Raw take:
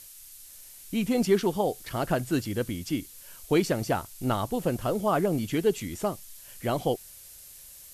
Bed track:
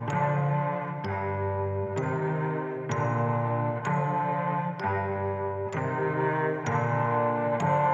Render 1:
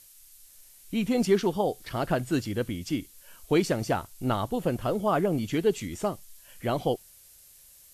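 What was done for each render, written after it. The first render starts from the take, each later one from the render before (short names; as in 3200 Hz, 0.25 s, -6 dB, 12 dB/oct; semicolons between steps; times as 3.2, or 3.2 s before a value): noise print and reduce 6 dB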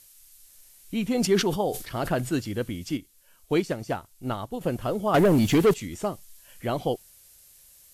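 1.13–2.37 sustainer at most 97 dB/s; 2.97–4.61 upward expander, over -35 dBFS; 5.14–5.74 sample leveller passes 3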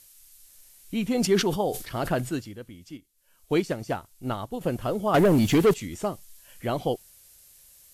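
2.18–3.54 dip -12 dB, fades 0.39 s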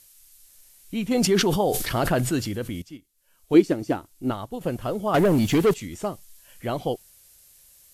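1.11–2.82 fast leveller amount 50%; 3.54–4.31 bell 310 Hz +12.5 dB 0.66 oct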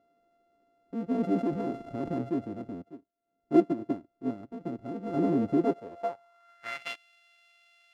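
sample sorter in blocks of 64 samples; band-pass sweep 290 Hz -> 2700 Hz, 5.57–6.89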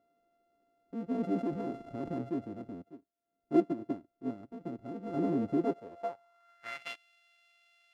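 gain -4.5 dB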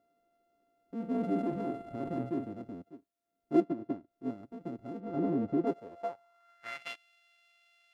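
0.95–2.52 doubler 48 ms -7 dB; 3.64–4.11 high shelf 5500 Hz -12 dB; 5–5.67 LPF 2200 Hz 6 dB/oct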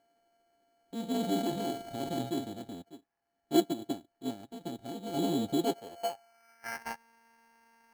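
sample-and-hold 12×; small resonant body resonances 820/1700/3800 Hz, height 12 dB, ringing for 30 ms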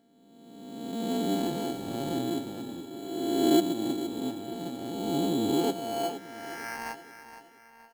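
spectral swells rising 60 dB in 1.71 s; feedback echo 0.468 s, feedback 40%, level -12 dB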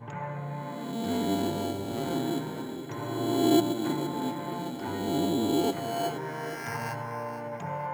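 add bed track -10 dB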